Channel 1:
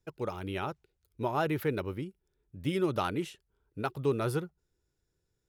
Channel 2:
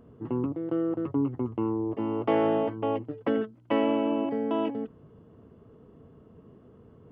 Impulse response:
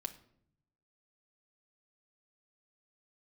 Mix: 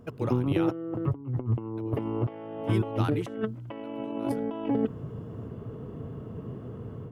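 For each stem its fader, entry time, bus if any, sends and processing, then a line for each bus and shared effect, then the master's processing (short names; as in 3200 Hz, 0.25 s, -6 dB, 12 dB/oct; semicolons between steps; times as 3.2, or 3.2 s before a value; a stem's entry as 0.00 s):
-2.0 dB, 0.00 s, muted 1.21–1.77, no send, compressor, threshold -32 dBFS, peak gain reduction 9 dB
-5.0 dB, 0.00 s, no send, AGC gain up to 10.5 dB; bell 120 Hz +8.5 dB 0.59 oct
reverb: off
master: negative-ratio compressor -28 dBFS, ratio -0.5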